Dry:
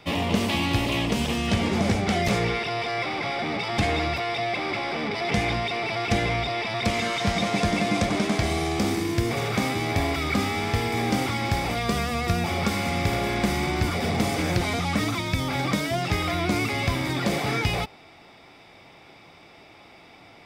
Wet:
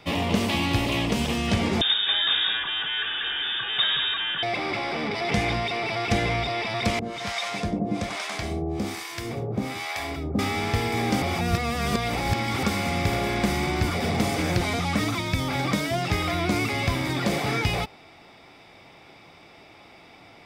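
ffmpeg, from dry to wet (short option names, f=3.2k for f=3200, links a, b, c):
-filter_complex "[0:a]asettb=1/sr,asplit=3[a][b][c];[a]atrim=end=1.814[d];[b]atrim=start=1.81:end=4.43,asetpts=PTS-STARTPTS,afade=t=in:d=0.004:c=qsin,afade=t=out:st=2.616:d=0.004:c=qsin,lowpass=f=3.2k:t=q:w=0.5098,lowpass=f=3.2k:t=q:w=0.6013,lowpass=f=3.2k:t=q:w=0.9,lowpass=f=3.2k:t=q:w=2.563,afreqshift=-3800[e];[c]atrim=start=4.426[f];[d][e]acrossfade=d=0.004:c1=hsin:c2=qsin[g];[g][f]acrossfade=d=0.004:c1=qsin:c2=hsin,asettb=1/sr,asplit=3[h][i][j];[h]atrim=end=6.994[k];[i]atrim=start=6.99:end=10.39,asetpts=PTS-STARTPTS,afade=t=in:d=0.004:c=qsin,afade=t=out:st=3.396:d=0.004:c=qsin,acrossover=split=680[l][m];[l]aeval=exprs='val(0)*(1-1/2+1/2*cos(2*PI*1.2*n/s))':c=same[n];[m]aeval=exprs='val(0)*(1-1/2-1/2*cos(2*PI*1.2*n/s))':c=same[o];[n][o]amix=inputs=2:normalize=0[p];[j]atrim=start=10.386[q];[k][p]acrossfade=d=0.004:c1=hsin:c2=qsin[r];[r][q]acrossfade=d=0.004:c1=qsin:c2=hsin,asplit=3[s][t][u];[s]atrim=end=11.222[v];[t]atrim=start=11.218:end=12.632,asetpts=PTS-STARTPTS,areverse[w];[u]atrim=start=12.628[x];[v][w]acrossfade=d=0.004:c1=hsin:c2=hsin[y];[y][x]acrossfade=d=0.004:c1=hsin:c2=hsin"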